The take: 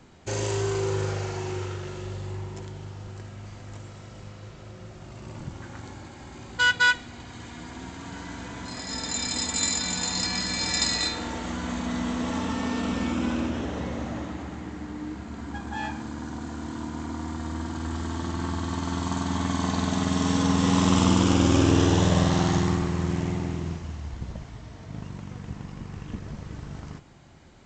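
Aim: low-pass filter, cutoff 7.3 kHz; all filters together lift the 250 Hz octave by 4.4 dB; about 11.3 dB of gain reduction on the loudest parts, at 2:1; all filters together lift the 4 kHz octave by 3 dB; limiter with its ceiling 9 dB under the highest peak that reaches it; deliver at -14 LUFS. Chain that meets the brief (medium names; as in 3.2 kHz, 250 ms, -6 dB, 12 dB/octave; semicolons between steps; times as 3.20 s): low-pass 7.3 kHz; peaking EQ 250 Hz +5.5 dB; peaking EQ 4 kHz +4 dB; compression 2:1, threshold -34 dBFS; trim +21.5 dB; peak limiter -3 dBFS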